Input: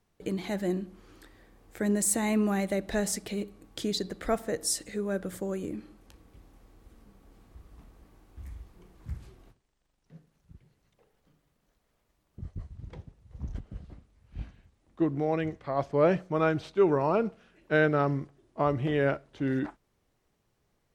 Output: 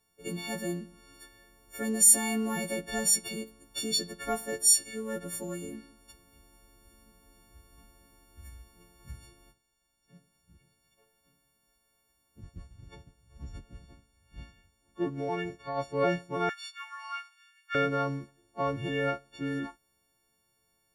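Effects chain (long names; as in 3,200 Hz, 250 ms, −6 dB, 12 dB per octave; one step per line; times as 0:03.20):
every partial snapped to a pitch grid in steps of 4 semitones
0:16.49–0:17.75: Butterworth high-pass 1,200 Hz 36 dB per octave
level −4.5 dB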